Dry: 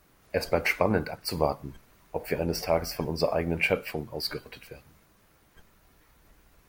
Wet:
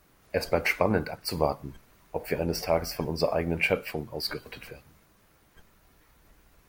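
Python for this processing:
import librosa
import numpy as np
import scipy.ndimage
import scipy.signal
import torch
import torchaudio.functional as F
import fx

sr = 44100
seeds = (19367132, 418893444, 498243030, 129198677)

y = fx.band_squash(x, sr, depth_pct=100, at=(4.28, 4.71))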